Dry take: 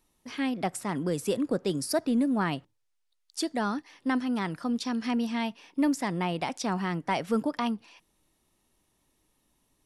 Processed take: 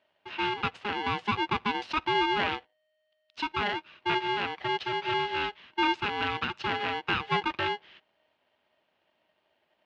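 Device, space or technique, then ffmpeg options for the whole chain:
ring modulator pedal into a guitar cabinet: -af "aeval=exprs='val(0)*sgn(sin(2*PI*620*n/s))':c=same,highpass=90,equalizer=f=140:t=q:w=4:g=-4,equalizer=f=290:t=q:w=4:g=-5,equalizer=f=440:t=q:w=4:g=-4,equalizer=f=2.8k:t=q:w=4:g=6,lowpass=f=3.6k:w=0.5412,lowpass=f=3.6k:w=1.3066"

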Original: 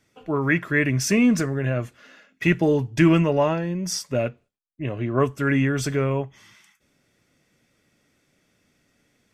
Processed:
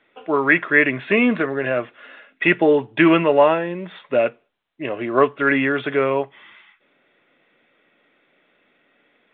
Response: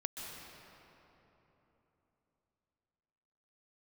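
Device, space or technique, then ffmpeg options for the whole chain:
telephone: -af "highpass=390,lowpass=3.5k,volume=8dB" -ar 8000 -c:a pcm_mulaw

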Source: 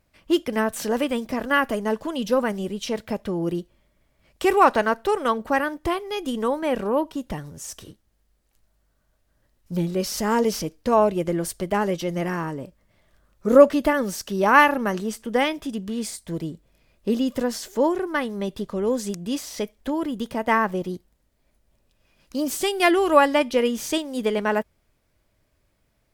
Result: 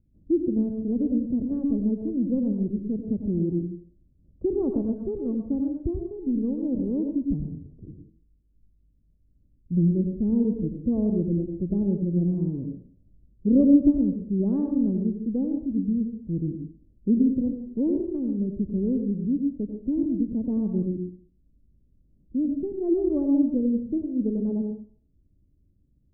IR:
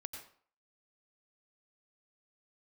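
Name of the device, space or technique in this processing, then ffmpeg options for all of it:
next room: -filter_complex "[0:a]lowpass=f=300:w=0.5412,lowpass=f=300:w=1.3066[a];[1:a]atrim=start_sample=2205[b];[a][b]afir=irnorm=-1:irlink=0,volume=8dB"

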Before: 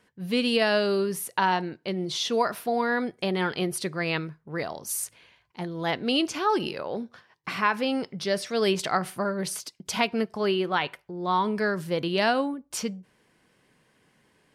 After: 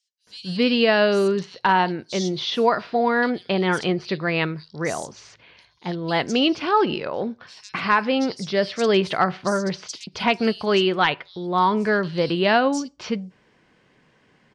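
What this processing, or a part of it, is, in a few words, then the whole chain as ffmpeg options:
synthesiser wavefolder: -filter_complex "[0:a]asettb=1/sr,asplit=3[a][b][c];[a]atrim=end=10.154[d];[b]atrim=start=10.15:end=10.83,asetpts=PTS-STARTPTS,afade=t=in:d=0.004:c=qsin,afade=t=out:st=0.676:d=0.004:c=qsin,aemphasis=mode=production:type=75kf[e];[c]atrim=start=10.826[f];[d][e]acrossfade=d=0.004:c1=hsin:c2=qsin[g];[g][f]acrossfade=d=0.004:c1=qsin:c2=hsin,aeval=exprs='0.251*(abs(mod(val(0)/0.251+3,4)-2)-1)':c=same,lowpass=f=6.3k:w=0.5412,lowpass=f=6.3k:w=1.3066,acrossover=split=4700[h][i];[h]adelay=270[j];[j][i]amix=inputs=2:normalize=0,volume=5.5dB"

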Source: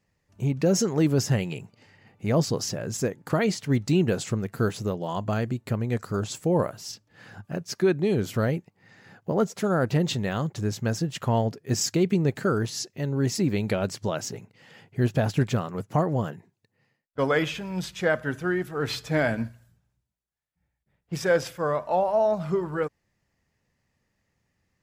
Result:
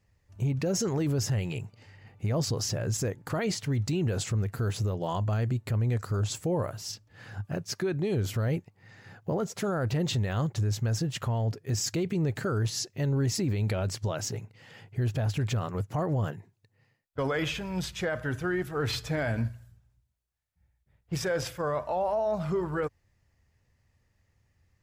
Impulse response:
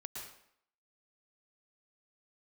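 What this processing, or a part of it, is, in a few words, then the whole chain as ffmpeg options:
car stereo with a boomy subwoofer: -af "lowshelf=f=130:t=q:w=1.5:g=8,alimiter=limit=-21.5dB:level=0:latency=1:release=26"

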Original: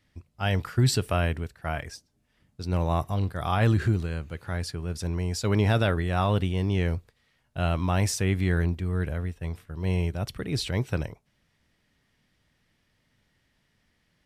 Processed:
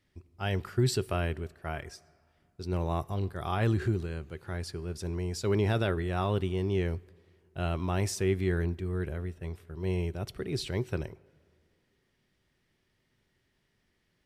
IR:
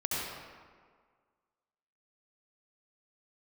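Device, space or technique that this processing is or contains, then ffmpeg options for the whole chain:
ducked reverb: -filter_complex "[0:a]equalizer=f=380:t=o:w=0.25:g=11,asplit=3[a][b][c];[1:a]atrim=start_sample=2205[d];[b][d]afir=irnorm=-1:irlink=0[e];[c]apad=whole_len=628679[f];[e][f]sidechaincompress=threshold=-37dB:ratio=4:attack=29:release=1440,volume=-17.5dB[g];[a][g]amix=inputs=2:normalize=0,volume=-6dB"

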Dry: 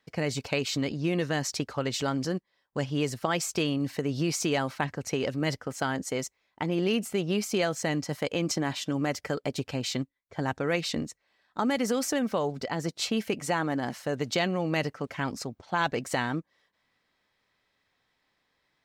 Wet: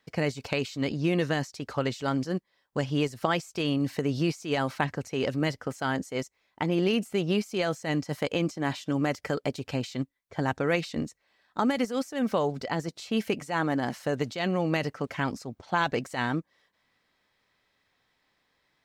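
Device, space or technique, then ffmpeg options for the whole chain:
de-esser from a sidechain: -filter_complex "[0:a]asplit=2[a][b];[b]highpass=f=5.9k:w=0.5412,highpass=f=5.9k:w=1.3066,apad=whole_len=831041[c];[a][c]sidechaincompress=threshold=-49dB:ratio=6:attack=4.5:release=80,volume=2dB"

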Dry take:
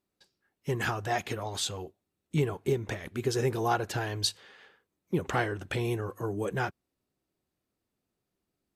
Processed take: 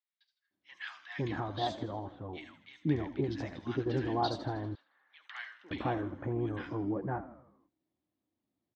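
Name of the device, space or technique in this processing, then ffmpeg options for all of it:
frequency-shifting delay pedal into a guitar cabinet: -filter_complex "[0:a]asplit=7[a][b][c][d][e][f][g];[b]adelay=80,afreqshift=-66,volume=-13.5dB[h];[c]adelay=160,afreqshift=-132,volume=-18.7dB[i];[d]adelay=240,afreqshift=-198,volume=-23.9dB[j];[e]adelay=320,afreqshift=-264,volume=-29.1dB[k];[f]adelay=400,afreqshift=-330,volume=-34.3dB[l];[g]adelay=480,afreqshift=-396,volume=-39.5dB[m];[a][h][i][j][k][l][m]amix=inputs=7:normalize=0,highpass=89,equalizer=f=160:t=q:w=4:g=-4,equalizer=f=300:t=q:w=4:g=8,equalizer=f=430:t=q:w=4:g=-9,equalizer=f=1.4k:t=q:w=4:g=-6,equalizer=f=2.6k:t=q:w=4:g=-8,lowpass=f=3.9k:w=0.5412,lowpass=f=3.9k:w=1.3066,asettb=1/sr,asplit=3[n][o][p];[n]atrim=end=4.244[q];[o]atrim=start=4.24:end=5.2,asetpts=PTS-STARTPTS,afade=t=in:d=0.004:c=qsin,afade=t=out:st=0.956:d=0.004:c=qsin,highpass=1.5k[r];[p]atrim=start=5.196[s];[q][r]acrossfade=d=0.004:c1=hsin:c2=qsin[t];[t][s]acrossfade=d=0.004:c1=qsin:c2=hsin,acrossover=split=1500|5200[u][v][w];[w]adelay=70[x];[u]adelay=510[y];[y][v][x]amix=inputs=3:normalize=0,volume=-2dB"

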